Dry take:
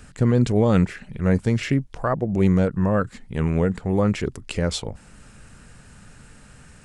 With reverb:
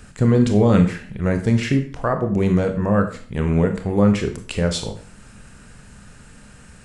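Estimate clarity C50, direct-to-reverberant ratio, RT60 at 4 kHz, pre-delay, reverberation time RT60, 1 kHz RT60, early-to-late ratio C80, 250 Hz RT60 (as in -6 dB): 10.0 dB, 6.0 dB, 0.40 s, 20 ms, 0.45 s, 0.45 s, 14.0 dB, 0.50 s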